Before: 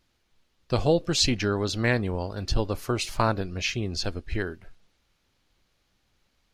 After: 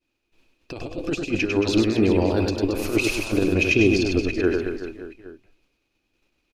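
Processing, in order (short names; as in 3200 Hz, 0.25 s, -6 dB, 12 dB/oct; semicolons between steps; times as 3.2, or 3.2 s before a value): expander -59 dBFS; bell 190 Hz -8.5 dB 1.7 oct; negative-ratio compressor -33 dBFS, ratio -0.5; small resonant body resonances 300/2500 Hz, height 17 dB, ringing for 20 ms; on a send: reverse bouncing-ball echo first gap 0.1 s, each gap 1.25×, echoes 5; on the sum: gain +1.5 dB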